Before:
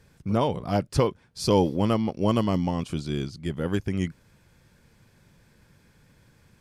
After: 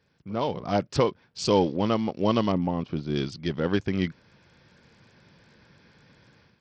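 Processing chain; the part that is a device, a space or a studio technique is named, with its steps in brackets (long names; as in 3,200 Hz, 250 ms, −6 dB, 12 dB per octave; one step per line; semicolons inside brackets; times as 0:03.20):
0:02.52–0:03.16: low-pass filter 1,000 Hz 6 dB per octave
Bluetooth headset (high-pass filter 190 Hz 6 dB per octave; automatic gain control gain up to 12.5 dB; downsampling to 16,000 Hz; level −7.5 dB; SBC 64 kbit/s 44,100 Hz)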